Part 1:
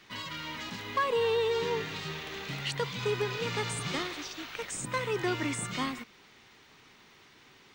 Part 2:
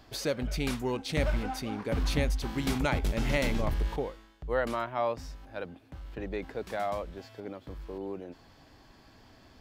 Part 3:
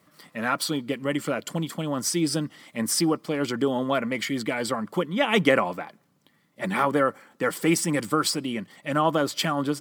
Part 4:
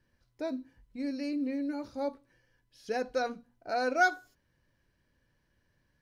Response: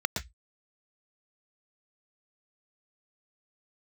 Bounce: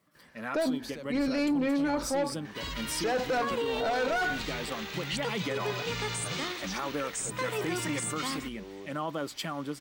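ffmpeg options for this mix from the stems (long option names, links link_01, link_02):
-filter_complex "[0:a]highshelf=frequency=5000:gain=5.5,bandreject=frequency=50:width_type=h:width=6,bandreject=frequency=100:width_type=h:width=6,bandreject=frequency=150:width_type=h:width=6,bandreject=frequency=200:width_type=h:width=6,bandreject=frequency=250:width_type=h:width=6,bandreject=frequency=300:width_type=h:width=6,bandreject=frequency=350:width_type=h:width=6,bandreject=frequency=400:width_type=h:width=6,bandreject=frequency=450:width_type=h:width=6,adelay=2450,volume=-0.5dB[link_01];[1:a]acompressor=threshold=-33dB:ratio=6,adelay=700,volume=-5.5dB[link_02];[2:a]volume=-10dB,asplit=2[link_03][link_04];[3:a]asplit=2[link_05][link_06];[link_06]highpass=frequency=720:poles=1,volume=27dB,asoftclip=type=tanh:threshold=-12.5dB[link_07];[link_05][link_07]amix=inputs=2:normalize=0,lowpass=frequency=2700:poles=1,volume=-6dB,adelay=150,volume=-1dB[link_08];[link_04]apad=whole_len=454424[link_09];[link_02][link_09]sidechaincompress=threshold=-38dB:ratio=8:attack=10:release=164[link_10];[link_01][link_10][link_03][link_08]amix=inputs=4:normalize=0,alimiter=limit=-22.5dB:level=0:latency=1:release=30"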